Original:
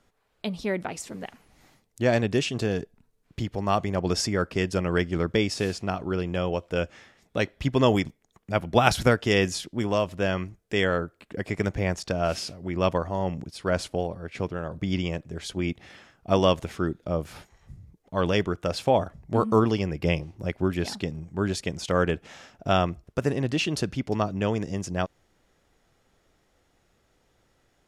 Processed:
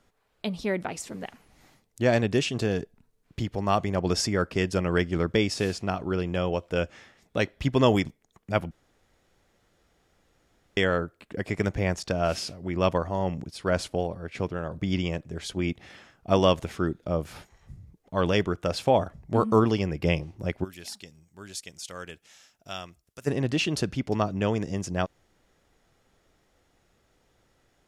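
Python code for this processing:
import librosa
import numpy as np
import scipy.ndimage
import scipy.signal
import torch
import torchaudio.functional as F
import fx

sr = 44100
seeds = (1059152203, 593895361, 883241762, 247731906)

y = fx.pre_emphasis(x, sr, coefficient=0.9, at=(20.63, 23.26), fade=0.02)
y = fx.edit(y, sr, fx.room_tone_fill(start_s=8.71, length_s=2.06), tone=tone)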